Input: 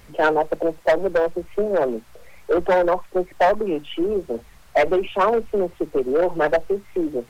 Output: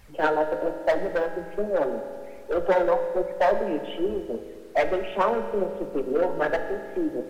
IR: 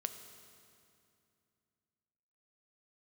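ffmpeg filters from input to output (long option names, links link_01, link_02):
-filter_complex "[0:a]flanger=delay=1.1:depth=8.6:regen=48:speed=1.2:shape=sinusoidal[link_01];[1:a]atrim=start_sample=2205,asetrate=57330,aresample=44100[link_02];[link_01][link_02]afir=irnorm=-1:irlink=0,volume=2.5dB"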